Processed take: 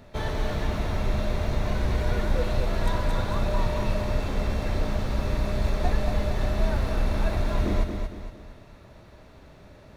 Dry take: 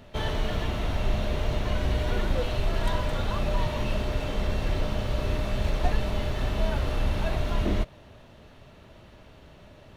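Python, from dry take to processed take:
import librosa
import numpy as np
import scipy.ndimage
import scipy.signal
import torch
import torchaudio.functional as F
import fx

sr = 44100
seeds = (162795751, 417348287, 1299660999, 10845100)

y = fx.peak_eq(x, sr, hz=3000.0, db=-10.0, octaves=0.26)
y = fx.echo_feedback(y, sr, ms=230, feedback_pct=41, wet_db=-6.0)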